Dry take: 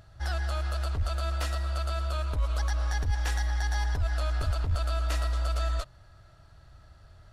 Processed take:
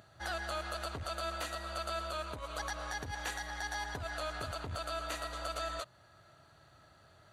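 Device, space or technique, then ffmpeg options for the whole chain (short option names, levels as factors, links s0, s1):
PA system with an anti-feedback notch: -af "highpass=180,asuperstop=centerf=5300:order=4:qfactor=7.6,alimiter=level_in=1.41:limit=0.0631:level=0:latency=1:release=339,volume=0.708"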